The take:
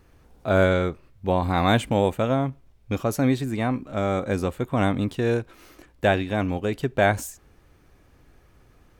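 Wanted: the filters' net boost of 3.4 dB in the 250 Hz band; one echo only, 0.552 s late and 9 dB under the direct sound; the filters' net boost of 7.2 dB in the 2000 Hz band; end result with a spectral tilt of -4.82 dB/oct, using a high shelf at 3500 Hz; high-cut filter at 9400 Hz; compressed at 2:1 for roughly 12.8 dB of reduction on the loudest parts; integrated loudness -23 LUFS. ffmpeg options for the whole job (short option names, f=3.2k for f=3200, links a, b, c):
-af "lowpass=9.4k,equalizer=f=250:t=o:g=4,equalizer=f=2k:t=o:g=7.5,highshelf=f=3.5k:g=8,acompressor=threshold=-36dB:ratio=2,aecho=1:1:552:0.355,volume=9.5dB"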